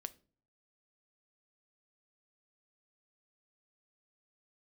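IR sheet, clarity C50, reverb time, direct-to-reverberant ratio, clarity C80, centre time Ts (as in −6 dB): 20.0 dB, non-exponential decay, 12.0 dB, 26.0 dB, 3 ms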